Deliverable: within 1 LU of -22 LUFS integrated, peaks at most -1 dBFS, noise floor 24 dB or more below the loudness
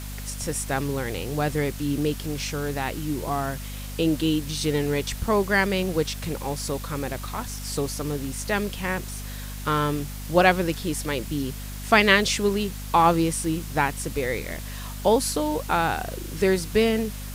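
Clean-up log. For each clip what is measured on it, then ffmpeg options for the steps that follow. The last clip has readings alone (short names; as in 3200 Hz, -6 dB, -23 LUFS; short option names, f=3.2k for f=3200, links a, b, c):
hum 50 Hz; harmonics up to 250 Hz; hum level -33 dBFS; noise floor -35 dBFS; noise floor target -49 dBFS; loudness -25.0 LUFS; peak -3.5 dBFS; loudness target -22.0 LUFS
-> -af "bandreject=f=50:t=h:w=6,bandreject=f=100:t=h:w=6,bandreject=f=150:t=h:w=6,bandreject=f=200:t=h:w=6,bandreject=f=250:t=h:w=6"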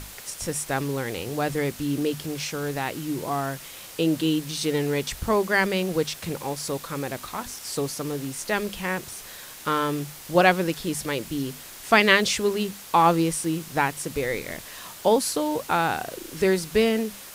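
hum none; noise floor -42 dBFS; noise floor target -49 dBFS
-> -af "afftdn=nr=7:nf=-42"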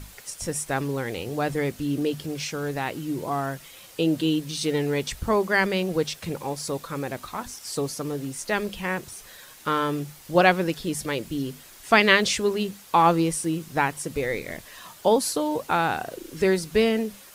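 noise floor -48 dBFS; noise floor target -49 dBFS
-> -af "afftdn=nr=6:nf=-48"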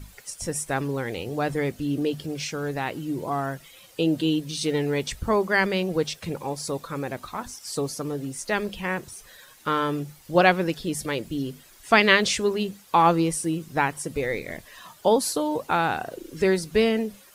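noise floor -52 dBFS; loudness -25.5 LUFS; peak -3.5 dBFS; loudness target -22.0 LUFS
-> -af "volume=3.5dB,alimiter=limit=-1dB:level=0:latency=1"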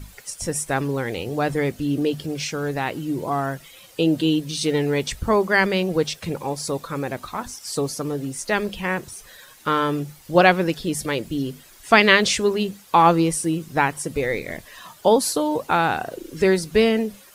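loudness -22.0 LUFS; peak -1.0 dBFS; noise floor -48 dBFS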